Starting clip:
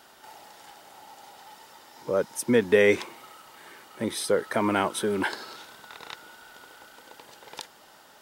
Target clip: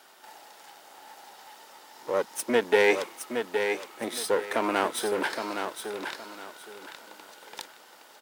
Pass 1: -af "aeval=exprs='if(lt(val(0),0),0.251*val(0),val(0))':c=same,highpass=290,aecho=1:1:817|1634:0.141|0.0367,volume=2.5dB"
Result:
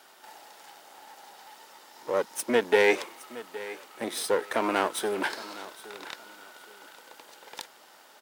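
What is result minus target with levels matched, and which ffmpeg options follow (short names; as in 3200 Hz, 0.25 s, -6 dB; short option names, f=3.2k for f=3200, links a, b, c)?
echo-to-direct -10.5 dB
-af "aeval=exprs='if(lt(val(0),0),0.251*val(0),val(0))':c=same,highpass=290,aecho=1:1:817|1634|2451:0.473|0.123|0.032,volume=2.5dB"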